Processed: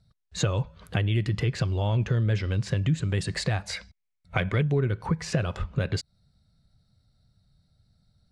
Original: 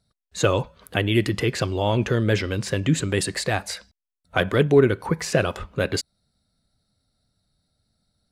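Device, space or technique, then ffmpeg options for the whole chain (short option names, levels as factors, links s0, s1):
jukebox: -filter_complex "[0:a]asettb=1/sr,asplit=3[s0][s1][s2];[s0]atrim=end=3.734[s3];[s1]atrim=start=3.73:end=4.62,asetpts=PTS-STARTPTS,afade=t=in:d=0.004:c=qsin,afade=t=out:st=0.886:d=0.004:c=qsin,equalizer=f=2200:t=o:w=0.24:g=12[s4];[s2]atrim=start=4.616[s5];[s3][s4]acrossfade=d=0.004:c1=hsin:c2=qsin[s6];[s6][s5]acrossfade=d=0.004:c1=qsin:c2=hsin,lowpass=6800,lowshelf=f=200:t=q:w=1.5:g=8,acompressor=threshold=0.0562:ratio=3"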